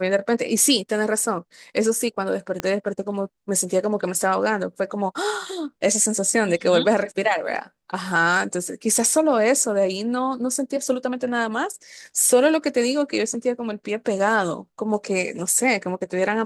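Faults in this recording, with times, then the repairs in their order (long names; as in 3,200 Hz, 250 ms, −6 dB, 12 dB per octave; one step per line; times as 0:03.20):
0:02.60: click −10 dBFS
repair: click removal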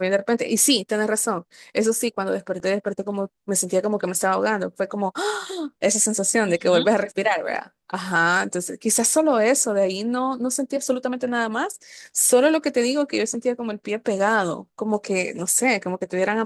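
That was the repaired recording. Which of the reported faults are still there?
0:02.60: click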